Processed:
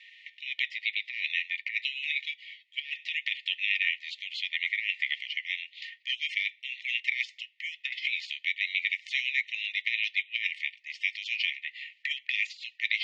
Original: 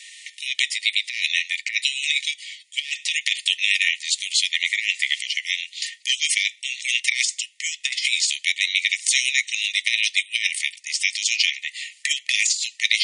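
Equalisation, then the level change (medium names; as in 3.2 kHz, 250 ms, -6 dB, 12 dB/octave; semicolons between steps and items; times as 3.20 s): four-pole ladder low-pass 3.5 kHz, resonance 25%; distance through air 63 m; -2.0 dB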